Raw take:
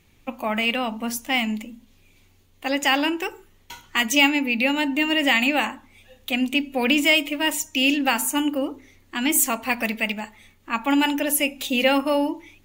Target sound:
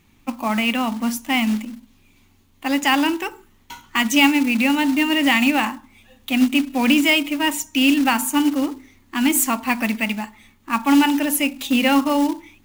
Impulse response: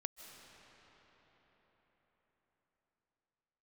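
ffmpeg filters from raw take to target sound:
-af "equalizer=f=250:t=o:w=1:g=8,equalizer=f=500:t=o:w=1:g=-6,equalizer=f=1k:t=o:w=1:g=6,acrusher=bits=4:mode=log:mix=0:aa=0.000001"

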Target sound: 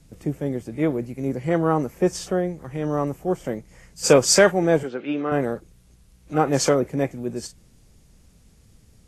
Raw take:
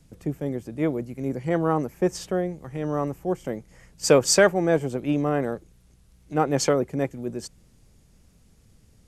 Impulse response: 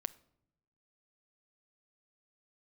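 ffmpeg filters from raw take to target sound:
-filter_complex "[0:a]asettb=1/sr,asplit=3[a][b][c];[a]atrim=end=4.834[d];[b]atrim=start=4.83:end=5.32,asetpts=PTS-STARTPTS,afade=t=in:d=0.004:c=qsin,afade=t=out:st=0.486:d=0.004:c=qsin,highpass=330,equalizer=f=660:t=q:w=4:g=-8,equalizer=f=1k:t=q:w=4:g=-4,equalizer=f=1.5k:t=q:w=4:g=9,lowpass=f=4.4k:w=0.5412,lowpass=f=4.4k:w=1.3066[e];[c]atrim=start=5.316[f];[d][e]acrossfade=d=0.004:c1=hsin:c2=qsin[g];[g][f]acrossfade=d=0.004:c1=qsin:c2=hsin,volume=2.5dB" -ar 32000 -c:a libvorbis -b:a 32k

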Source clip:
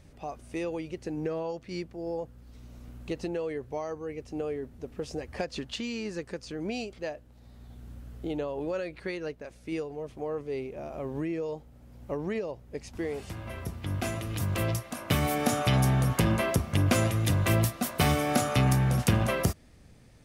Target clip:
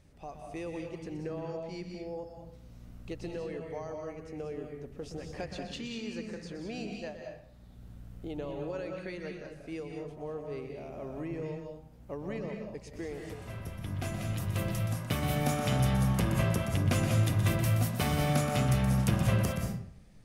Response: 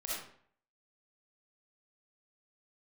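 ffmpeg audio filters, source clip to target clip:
-filter_complex "[0:a]asplit=2[a][b];[b]lowshelf=f=240:t=q:w=1.5:g=7.5[c];[1:a]atrim=start_sample=2205,adelay=123[d];[c][d]afir=irnorm=-1:irlink=0,volume=-4dB[e];[a][e]amix=inputs=2:normalize=0,volume=-6.5dB"

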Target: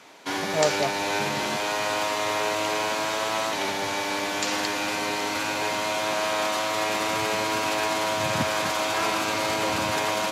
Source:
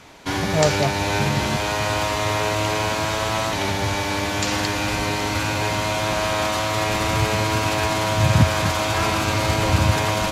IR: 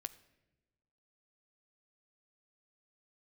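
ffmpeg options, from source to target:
-af "highpass=280,volume=-3dB"

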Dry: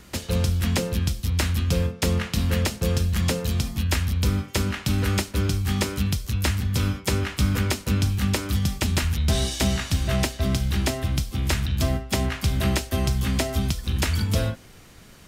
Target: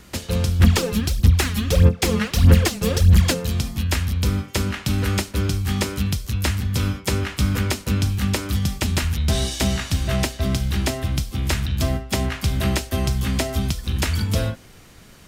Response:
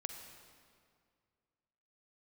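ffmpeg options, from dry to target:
-filter_complex "[0:a]asplit=3[a][b][c];[a]afade=t=out:st=0.59:d=0.02[d];[b]aphaser=in_gain=1:out_gain=1:delay=4.9:decay=0.72:speed=1.6:type=sinusoidal,afade=t=in:st=0.59:d=0.02,afade=t=out:st=3.33:d=0.02[e];[c]afade=t=in:st=3.33:d=0.02[f];[d][e][f]amix=inputs=3:normalize=0,volume=1.5dB"

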